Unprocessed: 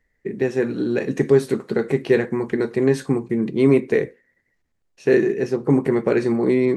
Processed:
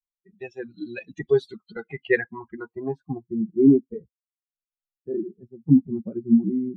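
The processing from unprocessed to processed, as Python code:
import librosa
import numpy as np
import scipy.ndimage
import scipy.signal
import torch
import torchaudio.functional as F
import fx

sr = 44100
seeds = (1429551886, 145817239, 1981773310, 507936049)

y = fx.bin_expand(x, sr, power=3.0)
y = fx.filter_sweep_lowpass(y, sr, from_hz=3400.0, to_hz=230.0, start_s=1.7, end_s=4.01, q=4.3)
y = F.gain(torch.from_numpy(y), -1.5).numpy()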